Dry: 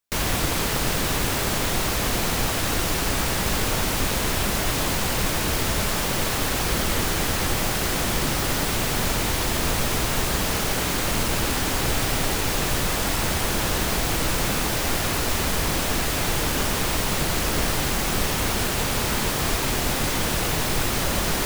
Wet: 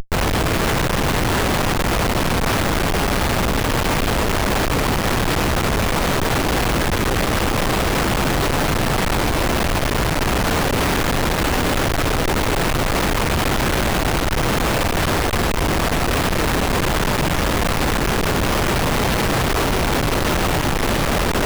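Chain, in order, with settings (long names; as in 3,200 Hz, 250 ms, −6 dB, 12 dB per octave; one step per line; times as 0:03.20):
linear delta modulator 32 kbit/s, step −38 dBFS
comparator with hysteresis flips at −38 dBFS
level +7 dB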